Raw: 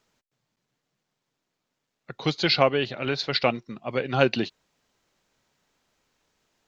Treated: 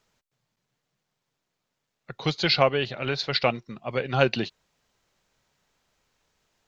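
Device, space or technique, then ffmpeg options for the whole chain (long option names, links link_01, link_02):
low shelf boost with a cut just above: -af "lowshelf=frequency=110:gain=4.5,equalizer=frequency=280:width_type=o:width=0.84:gain=-4.5"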